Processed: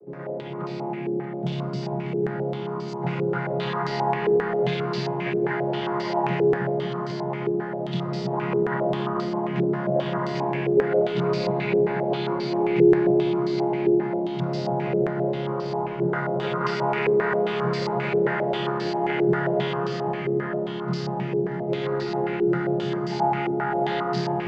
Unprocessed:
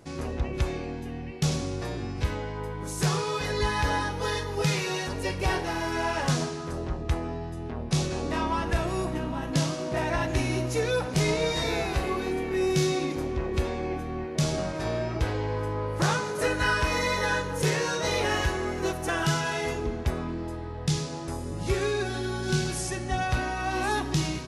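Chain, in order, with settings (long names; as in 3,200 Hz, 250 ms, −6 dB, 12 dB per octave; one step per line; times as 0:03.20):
channel vocoder with a chord as carrier major triad, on C#3
low-shelf EQ 380 Hz −9.5 dB
reversed playback
upward compression, threshold −38 dBFS
reversed playback
delay that swaps between a low-pass and a high-pass 317 ms, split 840 Hz, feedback 84%, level −7 dB
in parallel at −7 dB: hard clipping −33.5 dBFS, distortion −8 dB
on the sum: convolution reverb RT60 4.3 s, pre-delay 80 ms, DRR −0.5 dB
low-pass on a step sequencer 7.5 Hz 430–4,800 Hz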